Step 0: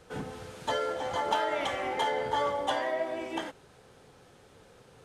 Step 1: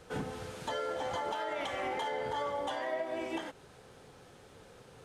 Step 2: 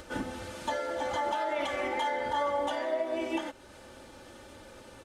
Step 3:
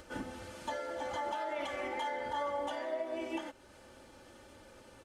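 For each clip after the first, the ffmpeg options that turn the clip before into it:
ffmpeg -i in.wav -af "alimiter=level_in=3.5dB:limit=-24dB:level=0:latency=1:release=237,volume=-3.5dB,volume=1dB" out.wav
ffmpeg -i in.wav -af "acompressor=mode=upward:threshold=-46dB:ratio=2.5,aecho=1:1:3.4:0.77,volume=1.5dB" out.wav
ffmpeg -i in.wav -af "bandreject=frequency=3700:width=16,volume=-6dB" out.wav

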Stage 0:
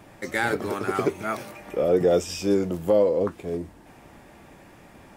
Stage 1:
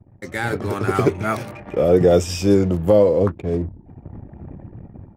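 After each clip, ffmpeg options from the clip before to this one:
ffmpeg -i in.wav -af "equalizer=frequency=100:width_type=o:width=1.3:gain=11.5,anlmdn=0.251,dynaudnorm=framelen=300:gausssize=5:maxgain=16.5dB,volume=-2dB" out.wav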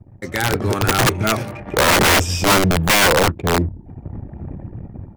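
ffmpeg -i in.wav -af "lowshelf=frequency=120:gain=4.5,aeval=exprs='(mod(3.98*val(0)+1,2)-1)/3.98':channel_layout=same,volume=3.5dB" out.wav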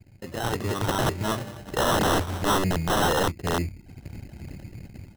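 ffmpeg -i in.wav -af "acrusher=samples=19:mix=1:aa=0.000001,volume=-8.5dB" out.wav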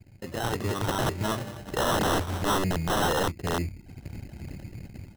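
ffmpeg -i in.wav -af "alimiter=limit=-20dB:level=0:latency=1:release=154" out.wav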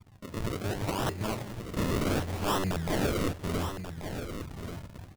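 ffmpeg -i in.wav -af "acrusher=samples=38:mix=1:aa=0.000001:lfo=1:lforange=38:lforate=0.67,aecho=1:1:1135:0.355,volume=-3.5dB" out.wav

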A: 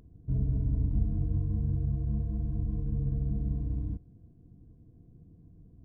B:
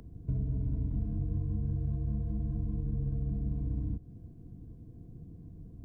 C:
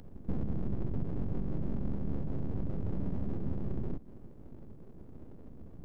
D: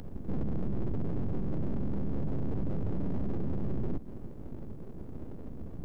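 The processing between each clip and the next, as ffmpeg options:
ffmpeg -i in.wav -filter_complex "[0:a]acrossover=split=120|310[link_01][link_02][link_03];[link_01]acompressor=threshold=-40dB:ratio=4[link_04];[link_02]acompressor=threshold=-45dB:ratio=4[link_05];[link_03]acompressor=threshold=-58dB:ratio=4[link_06];[link_04][link_05][link_06]amix=inputs=3:normalize=0,volume=6.5dB" out.wav
ffmpeg -i in.wav -af "aeval=exprs='abs(val(0))':channel_layout=same,volume=1dB" out.wav
ffmpeg -i in.wav -af "alimiter=level_in=7dB:limit=-24dB:level=0:latency=1:release=13,volume=-7dB,volume=7.5dB" out.wav

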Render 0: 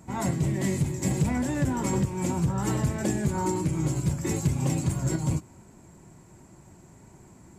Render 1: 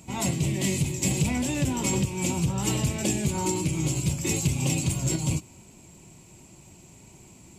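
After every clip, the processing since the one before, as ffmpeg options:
ffmpeg -i in.wav -af "acontrast=22,highshelf=frequency=2100:width_type=q:width=3:gain=7,volume=-5dB" out.wav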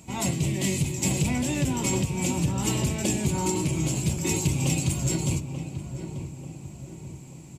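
ffmpeg -i in.wav -filter_complex "[0:a]asplit=2[link_01][link_02];[link_02]adelay=888,lowpass=frequency=1400:poles=1,volume=-8.5dB,asplit=2[link_03][link_04];[link_04]adelay=888,lowpass=frequency=1400:poles=1,volume=0.52,asplit=2[link_05][link_06];[link_06]adelay=888,lowpass=frequency=1400:poles=1,volume=0.52,asplit=2[link_07][link_08];[link_08]adelay=888,lowpass=frequency=1400:poles=1,volume=0.52,asplit=2[link_09][link_10];[link_10]adelay=888,lowpass=frequency=1400:poles=1,volume=0.52,asplit=2[link_11][link_12];[link_12]adelay=888,lowpass=frequency=1400:poles=1,volume=0.52[link_13];[link_01][link_03][link_05][link_07][link_09][link_11][link_13]amix=inputs=7:normalize=0" out.wav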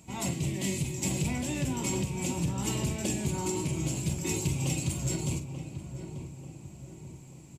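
ffmpeg -i in.wav -filter_complex "[0:a]asplit=2[link_01][link_02];[link_02]adelay=46,volume=-11dB[link_03];[link_01][link_03]amix=inputs=2:normalize=0,volume=-5.5dB" out.wav

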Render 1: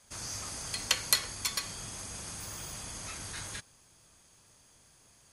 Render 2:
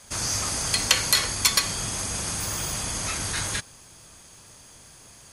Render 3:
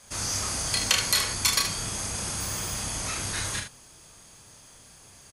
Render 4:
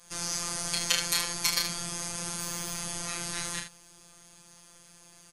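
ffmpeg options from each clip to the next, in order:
ffmpeg -i in.wav -af "alimiter=level_in=13.5dB:limit=-1dB:release=50:level=0:latency=1,volume=-1dB" out.wav
ffmpeg -i in.wav -af "aecho=1:1:31|75:0.596|0.398,volume=-4dB" out.wav
ffmpeg -i in.wav -af "afftfilt=real='hypot(re,im)*cos(PI*b)':imag='0':win_size=1024:overlap=0.75" out.wav

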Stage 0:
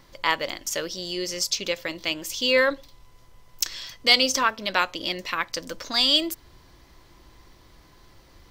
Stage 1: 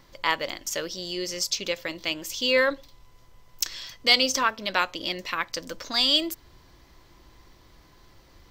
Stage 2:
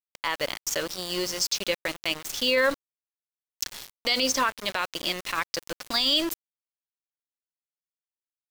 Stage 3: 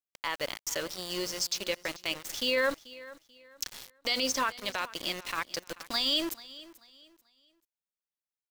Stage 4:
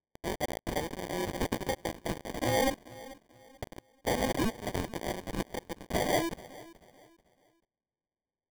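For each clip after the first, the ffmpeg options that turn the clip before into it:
ffmpeg -i in.wav -af "equalizer=frequency=9700:width=6.8:gain=-8.5,volume=-1.5dB" out.wav
ffmpeg -i in.wav -af "aeval=exprs='val(0)*gte(abs(val(0)),0.0237)':channel_layout=same,alimiter=limit=-16dB:level=0:latency=1:release=31,volume=2.5dB" out.wav
ffmpeg -i in.wav -af "aecho=1:1:437|874|1311:0.112|0.0348|0.0108,volume=-5dB" out.wav
ffmpeg -i in.wav -af "acrusher=samples=33:mix=1:aa=0.000001" out.wav

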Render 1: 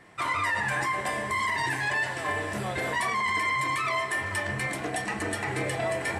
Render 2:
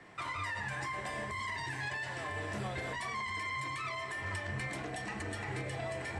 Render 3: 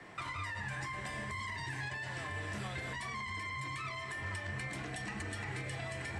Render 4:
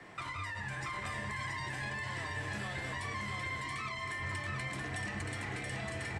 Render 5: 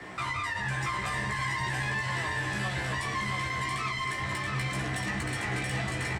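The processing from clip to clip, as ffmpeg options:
ffmpeg -i in.wav -filter_complex "[0:a]lowpass=7400,acrossover=split=140|3000[link_01][link_02][link_03];[link_02]acompressor=threshold=-30dB:ratio=6[link_04];[link_01][link_04][link_03]amix=inputs=3:normalize=0,acrossover=split=120[link_05][link_06];[link_06]alimiter=level_in=4.5dB:limit=-24dB:level=0:latency=1:release=343,volume=-4.5dB[link_07];[link_05][link_07]amix=inputs=2:normalize=0,volume=-1.5dB" out.wav
ffmpeg -i in.wav -filter_complex "[0:a]acrossover=split=270|1100[link_01][link_02][link_03];[link_01]acompressor=threshold=-44dB:ratio=4[link_04];[link_02]acompressor=threshold=-54dB:ratio=4[link_05];[link_03]acompressor=threshold=-44dB:ratio=4[link_06];[link_04][link_05][link_06]amix=inputs=3:normalize=0,volume=3dB" out.wav
ffmpeg -i in.wav -af "aecho=1:1:679:0.668" out.wav
ffmpeg -i in.wav -filter_complex "[0:a]asoftclip=type=tanh:threshold=-34.5dB,asplit=2[link_01][link_02];[link_02]adelay=16,volume=-3.5dB[link_03];[link_01][link_03]amix=inputs=2:normalize=0,volume=8dB" out.wav

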